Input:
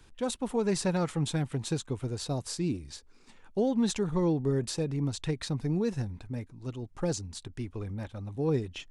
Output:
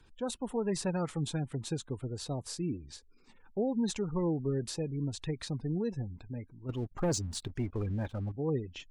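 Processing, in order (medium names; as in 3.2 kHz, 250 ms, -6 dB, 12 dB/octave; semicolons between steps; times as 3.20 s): spectral gate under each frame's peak -30 dB strong; 6.69–8.32 s: waveshaping leveller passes 2; trim -4 dB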